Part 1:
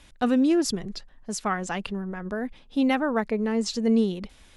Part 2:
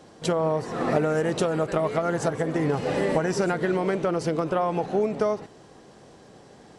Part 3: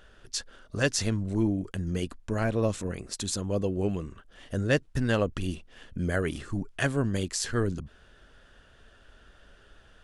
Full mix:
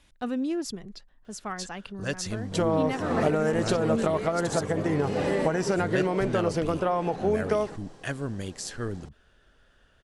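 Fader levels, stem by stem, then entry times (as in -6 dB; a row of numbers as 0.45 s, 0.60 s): -8.0 dB, -1.5 dB, -5.5 dB; 0.00 s, 2.30 s, 1.25 s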